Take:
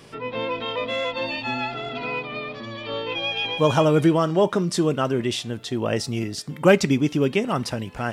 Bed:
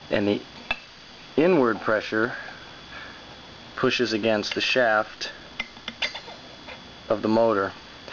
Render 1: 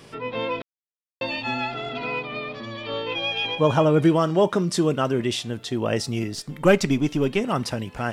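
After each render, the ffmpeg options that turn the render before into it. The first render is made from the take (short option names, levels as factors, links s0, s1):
-filter_complex "[0:a]asettb=1/sr,asplit=3[s0][s1][s2];[s0]atrim=end=3.554[s3];[s1]atrim=start=3.55:end=4.05,asetpts=PTS-STARTPTS,afade=t=in:d=0.004:c=qsin,afade=t=out:st=0.496:d=0.004:c=qsin,highshelf=f=3300:g=-9[s4];[s2]atrim=start=4.046[s5];[s3][s4]acrossfade=d=0.004:c1=hsin:c2=qsin[s6];[s6][s5]acrossfade=d=0.004:c1=qsin:c2=hsin,asettb=1/sr,asplit=3[s7][s8][s9];[s7]atrim=end=6.344[s10];[s8]atrim=start=6.34:end=7.41,asetpts=PTS-STARTPTS,afade=t=in:d=0.004:c=qsin,afade=t=out:st=1.066:d=0.004:c=qsin,aeval=exprs='if(lt(val(0),0),0.708*val(0),val(0))':c=same[s11];[s9]atrim=start=7.406[s12];[s10][s11]acrossfade=d=0.004:c1=hsin:c2=qsin[s13];[s13][s12]acrossfade=d=0.004:c1=qsin:c2=hsin,asplit=3[s14][s15][s16];[s14]atrim=end=0.62,asetpts=PTS-STARTPTS,afade=t=out:st=0.616:d=0.004:c=hsin[s17];[s15]atrim=start=0.62:end=1.21,asetpts=PTS-STARTPTS,volume=0[s18];[s16]atrim=start=1.21,asetpts=PTS-STARTPTS,afade=t=in:d=0.004:c=hsin[s19];[s17][s18][s19]concat=n=3:v=0:a=1"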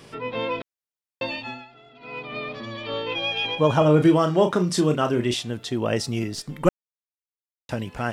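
-filter_complex "[0:a]asettb=1/sr,asplit=3[s0][s1][s2];[s0]atrim=end=3.784[s3];[s1]atrim=start=3.78:end=5.34,asetpts=PTS-STARTPTS,afade=t=in:d=0.004:c=qsin,afade=t=out:st=1.556:d=0.004:c=qsin,asplit=2[s4][s5];[s5]adelay=33,volume=0.447[s6];[s4][s6]amix=inputs=2:normalize=0,atrim=end_sample=68796[s7];[s2]atrim=start=5.336[s8];[s3][s7]acrossfade=d=0.004:c1=hsin:c2=qsin[s9];[s9][s8]acrossfade=d=0.004:c1=qsin:c2=hsin,asplit=5[s10][s11][s12][s13][s14];[s10]atrim=end=1.65,asetpts=PTS-STARTPTS,afade=t=out:st=1.23:d=0.42:silence=0.105925[s15];[s11]atrim=start=1.65:end=1.99,asetpts=PTS-STARTPTS,volume=0.106[s16];[s12]atrim=start=1.99:end=6.69,asetpts=PTS-STARTPTS,afade=t=in:d=0.42:silence=0.105925,afade=t=out:st=4.696:d=0.004:c=hsin[s17];[s13]atrim=start=6.69:end=7.69,asetpts=PTS-STARTPTS,volume=0[s18];[s14]atrim=start=7.69,asetpts=PTS-STARTPTS,afade=t=in:d=0.004:c=hsin[s19];[s15][s16][s17][s18][s19]concat=n=5:v=0:a=1"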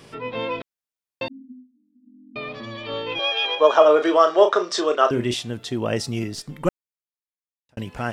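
-filter_complex "[0:a]asettb=1/sr,asplit=3[s0][s1][s2];[s0]atrim=end=1.284[s3];[s1]atrim=start=1.28:end=2.36,asetpts=PTS-STARTPTS,afade=t=in:d=0.004:c=qsin,afade=t=out:st=1.076:d=0.004:c=qsin,asuperpass=centerf=250:order=20:qfactor=2.7[s4];[s2]atrim=start=2.356[s5];[s3][s4]acrossfade=d=0.004:c1=hsin:c2=qsin[s6];[s6][s5]acrossfade=d=0.004:c1=qsin:c2=hsin,asettb=1/sr,asplit=3[s7][s8][s9];[s7]atrim=end=3.194[s10];[s8]atrim=start=3.19:end=5.11,asetpts=PTS-STARTPTS,afade=t=in:d=0.004:c=qsin,afade=t=out:st=1.916:d=0.004:c=qsin,highpass=f=390:w=0.5412,highpass=f=390:w=1.3066,equalizer=f=410:t=q:w=4:g=5,equalizer=f=640:t=q:w=4:g=7,equalizer=f=1200:t=q:w=4:g=9,equalizer=f=1700:t=q:w=4:g=5,equalizer=f=3600:t=q:w=4:g=6,equalizer=f=5500:t=q:w=4:g=4,lowpass=f=7100:w=0.5412,lowpass=f=7100:w=1.3066[s11];[s9]atrim=start=5.106[s12];[s10][s11]acrossfade=d=0.004:c1=hsin:c2=qsin[s13];[s13][s12]acrossfade=d=0.004:c1=qsin:c2=hsin,asplit=2[s14][s15];[s14]atrim=end=7.77,asetpts=PTS-STARTPTS,afade=t=out:st=6.28:d=1.49[s16];[s15]atrim=start=7.77,asetpts=PTS-STARTPTS,afade=t=in:d=0.004:c=hsin[s17];[s16][s17]concat=n=2:v=0:a=1"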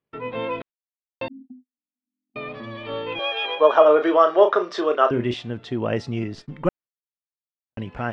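-af "lowpass=2700,agate=range=0.0126:threshold=0.00794:ratio=16:detection=peak"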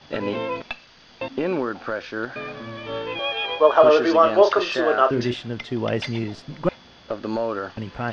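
-filter_complex "[1:a]volume=0.562[s0];[0:a][s0]amix=inputs=2:normalize=0"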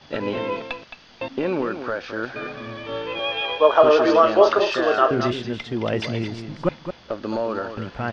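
-af "aecho=1:1:217:0.355"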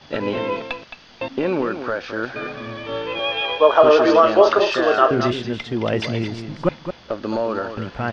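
-af "volume=1.33,alimiter=limit=0.794:level=0:latency=1"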